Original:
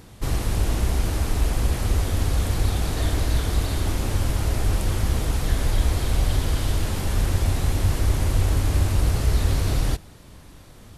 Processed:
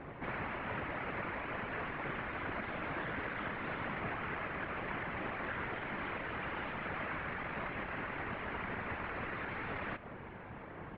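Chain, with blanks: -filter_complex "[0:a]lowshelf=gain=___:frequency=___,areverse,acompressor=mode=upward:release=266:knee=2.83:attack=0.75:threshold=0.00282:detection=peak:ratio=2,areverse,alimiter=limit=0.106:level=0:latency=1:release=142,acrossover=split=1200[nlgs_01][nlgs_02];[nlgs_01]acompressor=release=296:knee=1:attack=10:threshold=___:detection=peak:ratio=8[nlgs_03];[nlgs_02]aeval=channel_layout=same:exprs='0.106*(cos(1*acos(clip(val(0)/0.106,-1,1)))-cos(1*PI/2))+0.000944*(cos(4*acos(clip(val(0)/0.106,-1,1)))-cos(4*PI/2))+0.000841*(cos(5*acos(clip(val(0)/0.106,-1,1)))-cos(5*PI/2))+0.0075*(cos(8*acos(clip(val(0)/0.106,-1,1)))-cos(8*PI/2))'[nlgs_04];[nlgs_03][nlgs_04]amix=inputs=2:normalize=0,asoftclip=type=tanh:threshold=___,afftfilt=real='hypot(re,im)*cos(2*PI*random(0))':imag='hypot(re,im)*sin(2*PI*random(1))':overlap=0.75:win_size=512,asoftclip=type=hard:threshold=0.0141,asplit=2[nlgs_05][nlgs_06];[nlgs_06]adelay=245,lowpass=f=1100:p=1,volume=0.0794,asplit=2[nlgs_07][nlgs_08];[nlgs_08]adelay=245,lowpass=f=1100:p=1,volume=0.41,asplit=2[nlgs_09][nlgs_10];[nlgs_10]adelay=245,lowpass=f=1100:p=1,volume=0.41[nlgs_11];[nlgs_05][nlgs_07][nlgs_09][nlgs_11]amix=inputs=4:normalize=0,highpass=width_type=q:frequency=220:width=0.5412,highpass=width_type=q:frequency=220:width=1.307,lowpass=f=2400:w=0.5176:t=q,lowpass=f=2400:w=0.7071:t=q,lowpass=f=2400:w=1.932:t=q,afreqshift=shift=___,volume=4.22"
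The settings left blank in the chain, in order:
-10, 150, 0.0141, 0.0158, -140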